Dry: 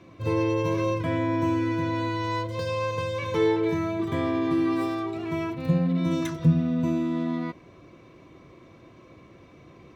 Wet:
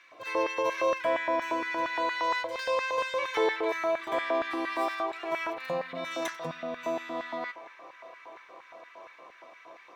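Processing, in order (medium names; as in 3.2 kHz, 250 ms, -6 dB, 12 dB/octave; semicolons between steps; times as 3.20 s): feedback echo behind a band-pass 703 ms, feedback 81%, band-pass 1.3 kHz, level -19 dB; LFO high-pass square 4.3 Hz 670–1700 Hz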